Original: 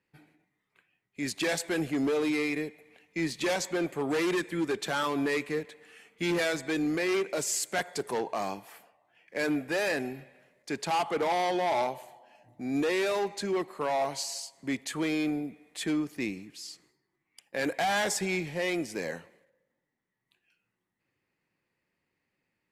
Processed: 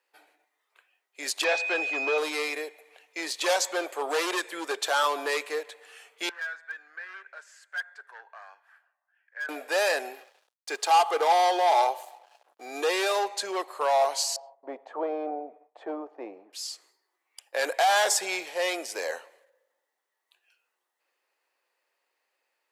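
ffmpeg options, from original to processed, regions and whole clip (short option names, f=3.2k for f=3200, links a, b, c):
-filter_complex "[0:a]asettb=1/sr,asplit=3[a][b][c];[a]atrim=end=1.444[d];[b]atrim=start=1.44:end=2.18,asetpts=PTS-STARTPTS,afade=t=in:d=0.004:c=qsin,afade=t=out:st=0.736:d=0.004:c=qsin,lowpass=f=6.8k:w=0.5412,lowpass=f=6.8k:w=1.3066,acrossover=split=3500[e][f];[f]acompressor=threshold=-50dB:ratio=4:attack=1:release=60[g];[e][g]amix=inputs=2:normalize=0,aeval=exprs='val(0)+0.0282*sin(2*PI*2500*n/s)':c=same[h];[c]atrim=start=2.176[i];[d][h]acrossfade=d=0.004:c1=hsin:c2=qsin[j];[j][i]acrossfade=d=0.004:c1=qsin:c2=hsin,asettb=1/sr,asplit=3[k][l][m];[k]atrim=end=6.294[n];[l]atrim=start=6.29:end=9.49,asetpts=PTS-STARTPTS,afade=t=in:d=0.004:c=qsin,afade=t=out:st=3.196:d=0.004:c=qsin,bandpass=f=1.6k:t=q:w=9.7,aeval=exprs='clip(val(0),-1,0.0211)':c=same[o];[m]atrim=start=9.486[p];[n][o]acrossfade=d=0.004:c1=hsin:c2=qsin[q];[q][p]acrossfade=d=0.004:c1=qsin:c2=hsin,asettb=1/sr,asplit=3[r][s][t];[r]atrim=end=10.134[u];[s]atrim=start=10.13:end=13.16,asetpts=PTS-STARTPTS,afade=t=in:d=0.004:c=qsin,afade=t=out:st=3.026:d=0.004:c=qsin,aecho=1:1:2.5:0.36,atrim=end_sample=133623,aeval=exprs='sgn(val(0))*max(abs(val(0))-0.00112,0)':c=same[v];[t]atrim=start=13.156[w];[u][v]acrossfade=d=0.004:c1=hsin:c2=qsin[x];[x][w]acrossfade=d=0.004:c1=qsin:c2=hsin,asettb=1/sr,asplit=3[y][z][aa];[y]atrim=end=14.364[ab];[z]atrim=start=14.36:end=16.53,asetpts=PTS-STARTPTS,afade=t=in:d=0.004:c=qsin,afade=t=out:st=2.166:d=0.004:c=qsin,agate=range=-33dB:threshold=-54dB:ratio=3:release=100:detection=peak,lowpass=f=740:t=q:w=2.1[ac];[aa]atrim=start=16.526[ad];[ab][ac]acrossfade=d=0.004:c1=hsin:c2=qsin[ae];[ae][ad]acrossfade=d=0.004:c1=qsin:c2=hsin,highpass=f=520:w=0.5412,highpass=f=520:w=1.3066,equalizer=f=2.1k:w=2.4:g=-6.5,volume=7dB"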